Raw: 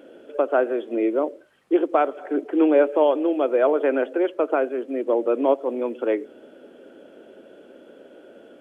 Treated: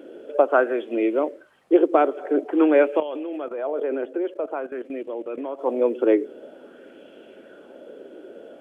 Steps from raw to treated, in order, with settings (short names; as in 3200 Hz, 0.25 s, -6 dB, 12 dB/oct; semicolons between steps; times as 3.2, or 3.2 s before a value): 3–5.59 level quantiser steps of 15 dB; LFO bell 0.49 Hz 350–2900 Hz +8 dB